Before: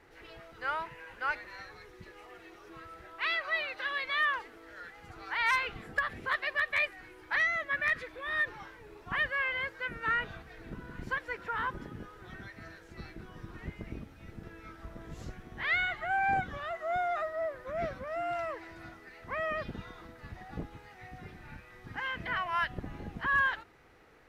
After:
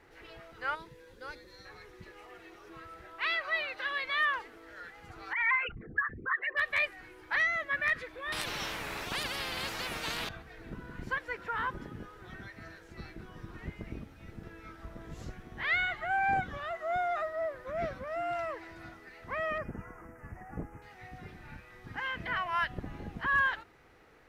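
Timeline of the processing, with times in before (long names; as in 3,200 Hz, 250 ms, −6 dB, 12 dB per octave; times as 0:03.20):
0:00.75–0:01.65: gain on a spectral selection 570–3,200 Hz −13 dB
0:05.33–0:06.57: spectral envelope exaggerated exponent 3
0:08.32–0:10.29: every bin compressed towards the loudest bin 10 to 1
0:19.58–0:20.82: Butterworth band-reject 3,800 Hz, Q 0.81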